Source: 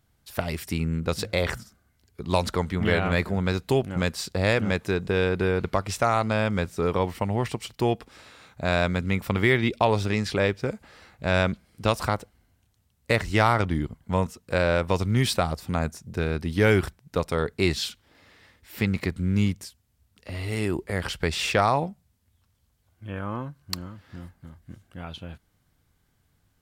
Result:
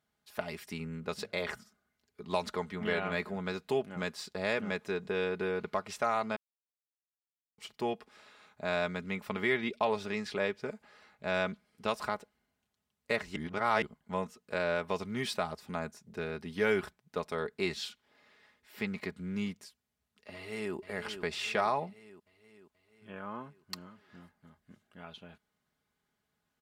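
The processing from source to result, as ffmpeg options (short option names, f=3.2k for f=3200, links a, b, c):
-filter_complex "[0:a]asplit=2[a][b];[b]afade=t=in:st=20.34:d=0.01,afade=t=out:st=20.75:d=0.01,aecho=0:1:480|960|1440|1920|2400|2880|3360:0.354813|0.212888|0.127733|0.0766397|0.0459838|0.0275903|0.0165542[c];[a][c]amix=inputs=2:normalize=0,asplit=5[d][e][f][g][h];[d]atrim=end=6.36,asetpts=PTS-STARTPTS,afade=t=out:st=6.356:d=0.004:c=hsin[i];[e]atrim=start=6.36:end=7.58,asetpts=PTS-STARTPTS,volume=0[j];[f]atrim=start=7.58:end=13.362,asetpts=PTS-STARTPTS,afade=t=in:d=0.004:c=hsin[k];[g]atrim=start=13.358:end=13.822,asetpts=PTS-STARTPTS,areverse[l];[h]atrim=start=13.818[m];[i][j][k]concat=n=3:v=0:a=1[n];[n][l]acrossfade=d=0.004:c1=hsin:c2=hsin[o];[o][m]acrossfade=d=0.004:c1=hsin:c2=hsin,highpass=f=360:p=1,highshelf=f=5.4k:g=-8.5,aecho=1:1:4.8:0.53,volume=-7.5dB"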